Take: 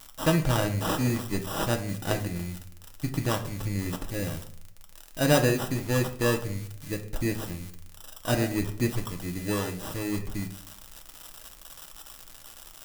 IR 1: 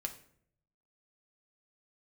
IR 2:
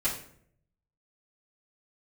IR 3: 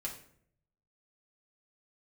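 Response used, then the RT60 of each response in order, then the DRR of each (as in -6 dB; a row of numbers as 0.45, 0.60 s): 1; 0.60, 0.60, 0.60 s; 3.5, -12.0, -3.5 dB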